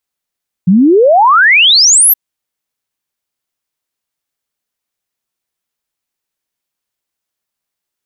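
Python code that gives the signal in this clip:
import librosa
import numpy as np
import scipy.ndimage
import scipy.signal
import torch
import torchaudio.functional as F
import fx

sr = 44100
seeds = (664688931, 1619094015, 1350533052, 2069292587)

y = fx.ess(sr, length_s=1.47, from_hz=170.0, to_hz=13000.0, level_db=-3.5)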